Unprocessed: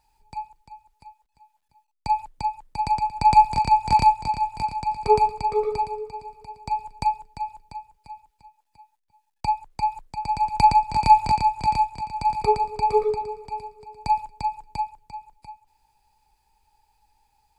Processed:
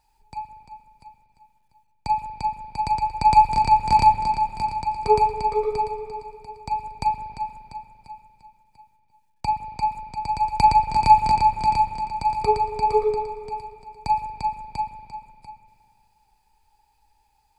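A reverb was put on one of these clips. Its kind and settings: spring tank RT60 2.2 s, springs 39/59 ms, chirp 75 ms, DRR 6.5 dB

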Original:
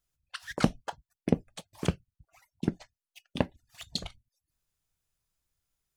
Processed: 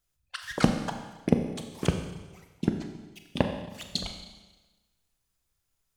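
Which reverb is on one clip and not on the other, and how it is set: Schroeder reverb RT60 1.2 s, combs from 30 ms, DRR 5 dB; gain +2.5 dB

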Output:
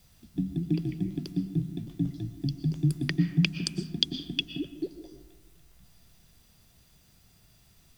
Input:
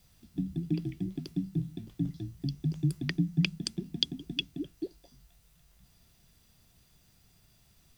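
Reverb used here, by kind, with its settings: digital reverb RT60 1.2 s, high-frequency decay 0.45×, pre-delay 80 ms, DRR 10.5 dB; gain +3 dB

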